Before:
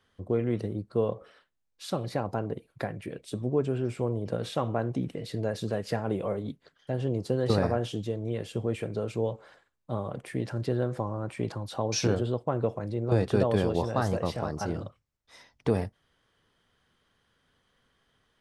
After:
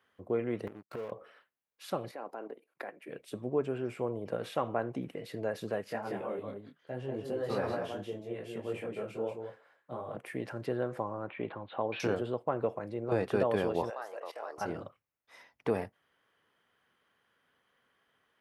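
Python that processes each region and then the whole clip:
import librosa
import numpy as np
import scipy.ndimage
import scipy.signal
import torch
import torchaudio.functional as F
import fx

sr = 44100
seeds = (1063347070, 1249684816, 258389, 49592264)

y = fx.chain(x, sr, fx.gate_flip(shuts_db=-28.0, range_db=-27),
    fx.leveller(passes=5), at=(0.67, 1.12))
y = fx.chain(y, sr, fx.highpass(hz=250.0, slope=24),
    fx.level_steps(step_db=13), at=(2.11, 3.09))
y = fx.chain(y, sr, fx.echo_single(ms=185, db=-5.0),
    fx.detune_double(cents=24), at=(5.84, 10.17))
y = fx.chain(y, sr, fx.steep_lowpass(hz=3800.0, slope=72),
    fx.peak_eq(hz=130.0, db=-4.0, octaves=0.43), at=(11.27, 12.0))
y = fx.chain(y, sr, fx.level_steps(step_db=18),
    fx.highpass(hz=430.0, slope=24), at=(13.9, 14.58))
y = fx.highpass(y, sr, hz=460.0, slope=6)
y = fx.band_shelf(y, sr, hz=5600.0, db=-8.5, octaves=1.7)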